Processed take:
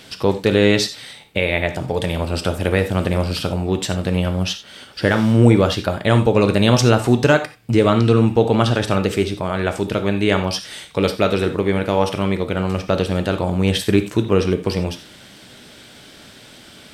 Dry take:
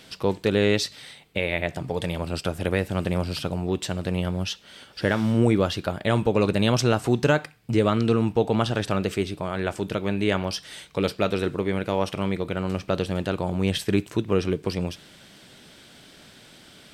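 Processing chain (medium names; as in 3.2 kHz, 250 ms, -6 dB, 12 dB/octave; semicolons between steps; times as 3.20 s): gated-style reverb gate 110 ms flat, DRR 8 dB; trim +6 dB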